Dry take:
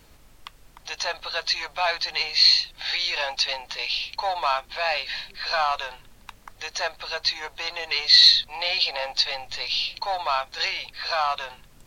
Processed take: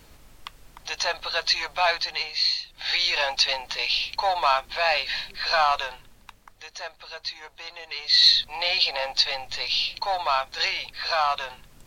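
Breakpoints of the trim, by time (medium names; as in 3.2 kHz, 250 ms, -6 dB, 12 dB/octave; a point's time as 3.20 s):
1.89 s +2 dB
2.58 s -9 dB
2.95 s +2.5 dB
5.78 s +2.5 dB
6.66 s -8.5 dB
7.97 s -8.5 dB
8.42 s +1 dB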